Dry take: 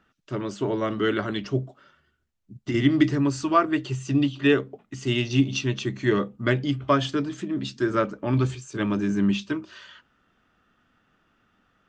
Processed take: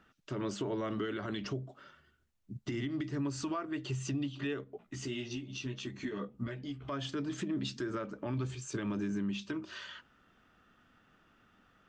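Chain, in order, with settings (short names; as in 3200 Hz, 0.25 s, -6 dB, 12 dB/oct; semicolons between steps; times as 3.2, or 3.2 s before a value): compressor 16:1, threshold -30 dBFS, peak gain reduction 18 dB; limiter -27 dBFS, peak gain reduction 8.5 dB; 4.64–6.85 chorus voices 6, 1.3 Hz, delay 14 ms, depth 3 ms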